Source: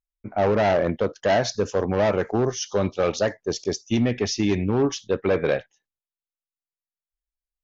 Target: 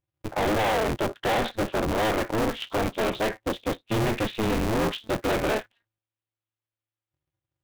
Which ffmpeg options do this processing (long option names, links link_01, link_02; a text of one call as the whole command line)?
ffmpeg -i in.wav -af "aresample=8000,asoftclip=type=hard:threshold=-25.5dB,aresample=44100,aeval=exprs='val(0)*sgn(sin(2*PI*110*n/s))':channel_layout=same,volume=3.5dB" out.wav